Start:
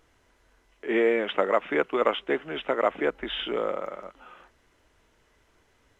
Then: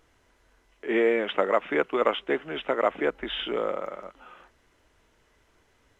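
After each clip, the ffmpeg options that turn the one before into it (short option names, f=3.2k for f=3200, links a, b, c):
-af anull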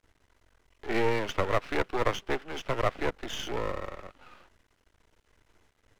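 -filter_complex "[0:a]acrossover=split=150|720|860[a][b][c][d];[a]acompressor=mode=upward:threshold=-57dB:ratio=2.5[e];[e][b][c][d]amix=inputs=4:normalize=0,aeval=exprs='max(val(0),0)':c=same"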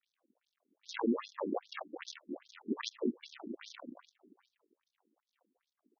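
-af "aresample=16000,acrusher=samples=30:mix=1:aa=0.000001:lfo=1:lforange=18:lforate=0.59,aresample=44100,aecho=1:1:81:0.0668,afftfilt=real='re*between(b*sr/1024,270*pow(4800/270,0.5+0.5*sin(2*PI*2.5*pts/sr))/1.41,270*pow(4800/270,0.5+0.5*sin(2*PI*2.5*pts/sr))*1.41)':imag='im*between(b*sr/1024,270*pow(4800/270,0.5+0.5*sin(2*PI*2.5*pts/sr))/1.41,270*pow(4800/270,0.5+0.5*sin(2*PI*2.5*pts/sr))*1.41)':win_size=1024:overlap=0.75,volume=1.5dB"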